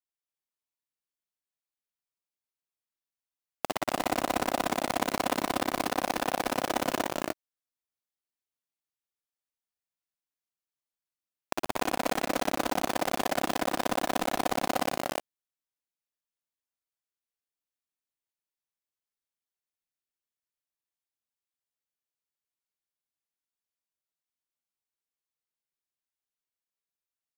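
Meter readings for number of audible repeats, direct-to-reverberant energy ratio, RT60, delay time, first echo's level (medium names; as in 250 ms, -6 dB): 3, no reverb, no reverb, 52 ms, -7.0 dB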